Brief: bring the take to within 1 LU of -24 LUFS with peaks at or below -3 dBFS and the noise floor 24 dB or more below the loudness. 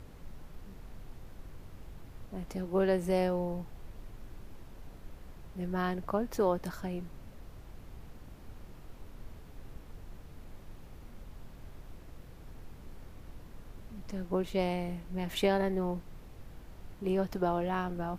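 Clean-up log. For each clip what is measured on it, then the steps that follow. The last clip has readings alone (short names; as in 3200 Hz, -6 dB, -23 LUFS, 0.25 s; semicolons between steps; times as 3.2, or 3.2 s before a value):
noise floor -51 dBFS; noise floor target -57 dBFS; loudness -33.0 LUFS; peak -15.5 dBFS; loudness target -24.0 LUFS
-> noise print and reduce 6 dB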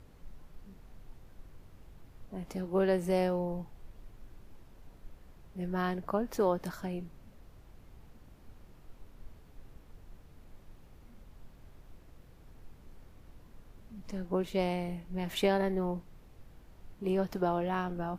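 noise floor -57 dBFS; loudness -33.0 LUFS; peak -15.5 dBFS; loudness target -24.0 LUFS
-> gain +9 dB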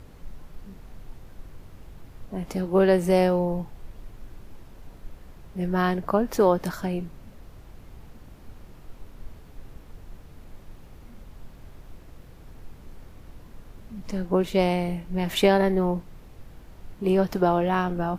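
loudness -24.0 LUFS; peak -6.5 dBFS; noise floor -48 dBFS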